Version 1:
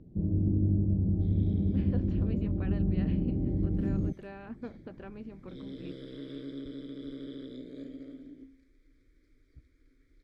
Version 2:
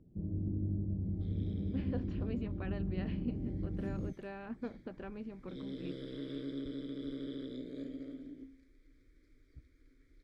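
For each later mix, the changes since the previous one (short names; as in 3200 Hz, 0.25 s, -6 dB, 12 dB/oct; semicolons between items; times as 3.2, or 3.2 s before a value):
first sound -9.0 dB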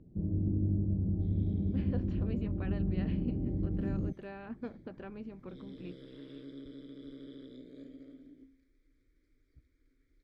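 first sound +5.0 dB; second sound -6.5 dB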